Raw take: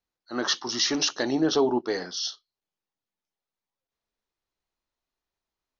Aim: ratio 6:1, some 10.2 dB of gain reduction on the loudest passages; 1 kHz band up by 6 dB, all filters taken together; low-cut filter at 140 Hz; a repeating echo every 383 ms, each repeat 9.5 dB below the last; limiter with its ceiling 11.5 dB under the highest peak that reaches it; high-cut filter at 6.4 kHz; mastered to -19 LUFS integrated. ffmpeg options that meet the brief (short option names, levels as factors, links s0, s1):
-af "highpass=140,lowpass=6400,equalizer=f=1000:t=o:g=7.5,acompressor=threshold=0.0447:ratio=6,alimiter=level_in=1.41:limit=0.0631:level=0:latency=1,volume=0.708,aecho=1:1:383|766|1149|1532:0.335|0.111|0.0365|0.012,volume=7.08"